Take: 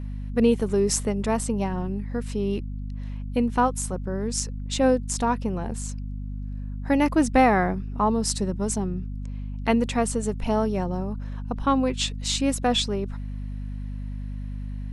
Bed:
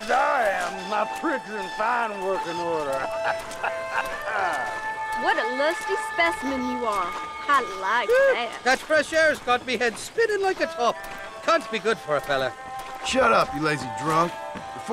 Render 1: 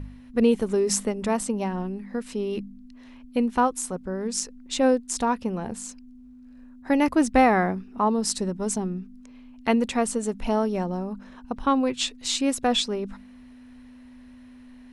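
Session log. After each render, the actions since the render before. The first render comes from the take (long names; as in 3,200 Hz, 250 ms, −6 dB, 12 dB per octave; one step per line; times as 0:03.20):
hum removal 50 Hz, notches 4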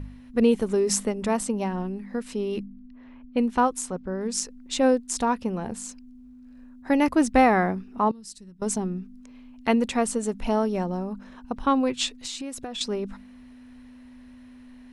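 0:02.63–0:04.21: low-pass that shuts in the quiet parts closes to 1,700 Hz, open at −20.5 dBFS
0:08.11–0:08.62: guitar amp tone stack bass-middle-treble 6-0-2
0:12.13–0:12.81: downward compressor 16 to 1, threshold −30 dBFS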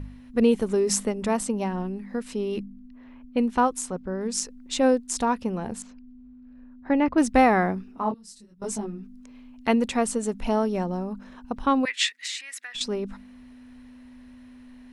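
0:05.82–0:07.18: high-frequency loss of the air 310 metres
0:07.91–0:09.02: micro pitch shift up and down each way 32 cents → 16 cents
0:11.85–0:12.75: high-pass with resonance 1,900 Hz, resonance Q 7.5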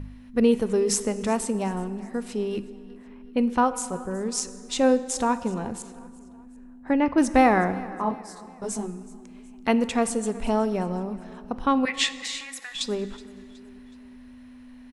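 repeating echo 371 ms, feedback 45%, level −21 dB
dense smooth reverb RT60 2.1 s, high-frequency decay 0.6×, DRR 13 dB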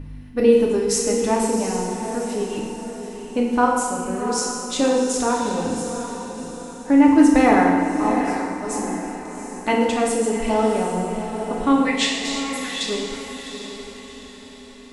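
feedback delay with all-pass diffusion 743 ms, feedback 43%, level −8.5 dB
feedback delay network reverb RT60 1.3 s, low-frequency decay 1.1×, high-frequency decay 1×, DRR −2 dB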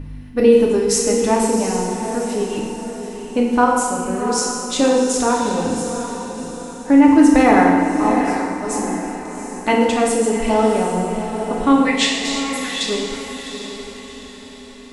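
level +3.5 dB
brickwall limiter −2 dBFS, peak gain reduction 2.5 dB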